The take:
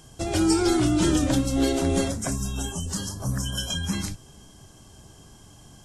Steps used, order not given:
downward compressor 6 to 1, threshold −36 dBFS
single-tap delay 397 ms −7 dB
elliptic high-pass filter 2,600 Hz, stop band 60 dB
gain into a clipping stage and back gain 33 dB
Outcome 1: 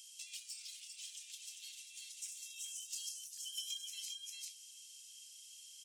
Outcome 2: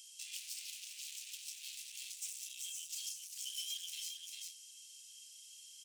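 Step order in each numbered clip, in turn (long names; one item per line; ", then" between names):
single-tap delay, then downward compressor, then gain into a clipping stage and back, then elliptic high-pass filter
gain into a clipping stage and back, then single-tap delay, then downward compressor, then elliptic high-pass filter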